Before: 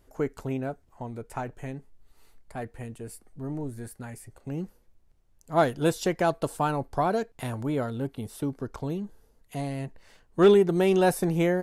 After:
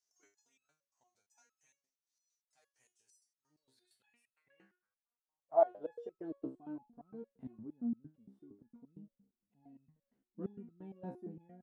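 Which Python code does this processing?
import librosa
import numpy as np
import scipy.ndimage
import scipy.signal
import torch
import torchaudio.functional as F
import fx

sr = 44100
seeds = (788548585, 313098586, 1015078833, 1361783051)

y = fx.filter_sweep_bandpass(x, sr, from_hz=5900.0, to_hz=230.0, start_s=3.39, end_s=6.69, q=7.0)
y = fx.resonator_held(y, sr, hz=8.7, low_hz=66.0, high_hz=1300.0)
y = y * librosa.db_to_amplitude(7.0)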